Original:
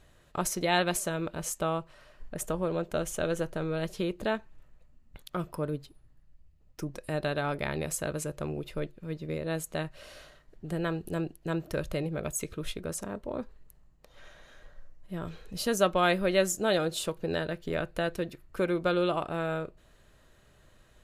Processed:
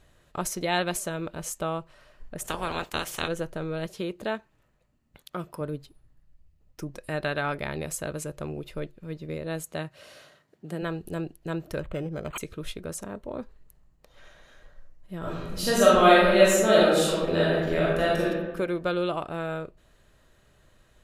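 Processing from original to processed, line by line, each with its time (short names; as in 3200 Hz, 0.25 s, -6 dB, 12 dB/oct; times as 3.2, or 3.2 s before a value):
2.44–3.27 spectral limiter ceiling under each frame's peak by 25 dB
3.86–5.61 HPF 140 Hz 6 dB/oct
6.94–7.6 dynamic EQ 1800 Hz, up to +6 dB, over -48 dBFS, Q 0.8
9.63–10.81 HPF 59 Hz -> 160 Hz 24 dB/oct
11.79–12.38 decimation joined by straight lines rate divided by 8×
12.97–13.38 notch 4900 Hz
15.18–18.26 reverb throw, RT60 1.2 s, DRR -7 dB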